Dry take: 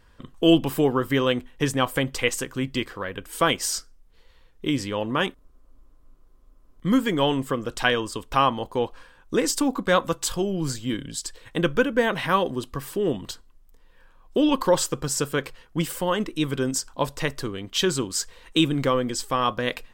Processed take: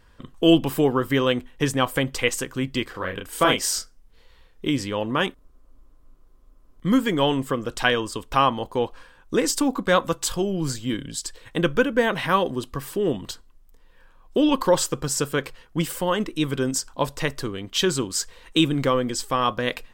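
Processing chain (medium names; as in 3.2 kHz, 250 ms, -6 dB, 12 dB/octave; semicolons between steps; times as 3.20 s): 2.91–4.68 s: doubling 33 ms -4 dB; trim +1 dB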